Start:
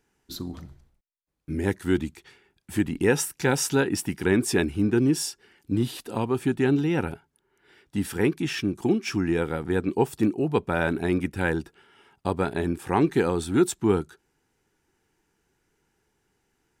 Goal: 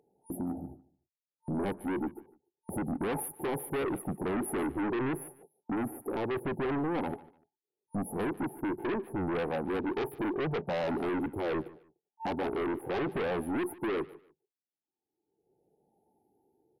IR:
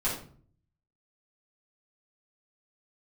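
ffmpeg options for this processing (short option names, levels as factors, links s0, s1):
-af "afftfilt=real='re*pow(10,7/40*sin(2*PI*(0.55*log(max(b,1)*sr/1024/100)/log(2)-(0.77)*(pts-256)/sr)))':imag='im*pow(10,7/40*sin(2*PI*(0.55*log(max(b,1)*sr/1024/100)/log(2)-(0.77)*(pts-256)/sr)))':win_size=1024:overlap=0.75,agate=range=0.00126:threshold=0.00447:ratio=16:detection=peak,highpass=400,aemphasis=mode=reproduction:type=riaa,afftfilt=real='re*(1-between(b*sr/4096,900,9700))':imag='im*(1-between(b*sr/4096,900,9700))':win_size=4096:overlap=0.75,highshelf=f=2700:g=7.5,alimiter=limit=0.133:level=0:latency=1:release=24,acompressor=mode=upward:threshold=0.0178:ratio=2.5,asoftclip=type=tanh:threshold=0.075,aeval=exprs='0.075*(cos(1*acos(clip(val(0)/0.075,-1,1)))-cos(1*PI/2))+0.00299*(cos(2*acos(clip(val(0)/0.075,-1,1)))-cos(2*PI/2))+0.0237*(cos(5*acos(clip(val(0)/0.075,-1,1)))-cos(5*PI/2))+0.00106*(cos(6*acos(clip(val(0)/0.075,-1,1)))-cos(6*PI/2))+0.00188*(cos(7*acos(clip(val(0)/0.075,-1,1)))-cos(7*PI/2))':c=same,aecho=1:1:148|296:0.0944|0.0245,volume=0.708"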